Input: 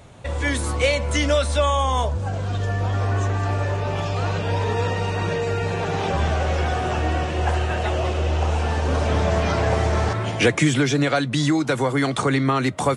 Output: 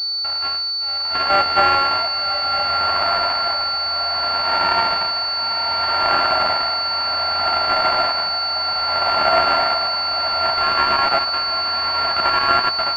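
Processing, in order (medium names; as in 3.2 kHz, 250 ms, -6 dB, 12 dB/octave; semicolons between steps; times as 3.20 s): sorted samples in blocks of 32 samples; elliptic high-pass 640 Hz, stop band 40 dB; peak limiter -10.5 dBFS, peak gain reduction 9 dB; level rider gain up to 8 dB; short-mantissa float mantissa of 2-bit; tremolo 0.64 Hz, depth 94%; on a send: echo that smears into a reverb 1023 ms, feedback 51%, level -7 dB; on the sum: class-D stage that switches slowly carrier 4.5 kHz; trim +4 dB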